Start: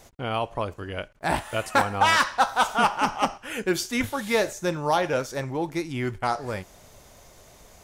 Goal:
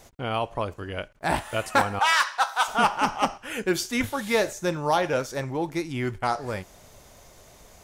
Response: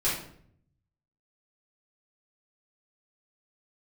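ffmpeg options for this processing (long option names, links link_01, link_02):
-filter_complex "[0:a]asettb=1/sr,asplit=3[link_01][link_02][link_03];[link_01]atrim=end=1.994[link_04];[link_02]atrim=start=1.99:end=2.68,asetpts=PTS-STARTPTS,afade=type=in:duration=0.004:curve=qsin,afade=type=out:start_time=0.686:duration=0.004:curve=qsin,highpass=870[link_05];[link_03]atrim=start=2.676[link_06];[link_04][link_05]acrossfade=duration=0.004:curve1=hsin:curve2=qsin[link_07];[link_07][link_06]acrossfade=duration=0.004:curve1=qsin:curve2=hsin"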